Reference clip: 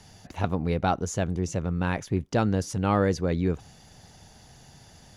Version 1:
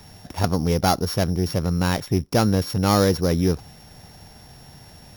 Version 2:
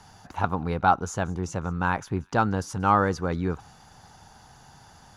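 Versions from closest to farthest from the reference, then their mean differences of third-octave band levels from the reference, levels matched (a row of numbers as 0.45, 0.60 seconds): 2, 1; 3.0, 5.0 decibels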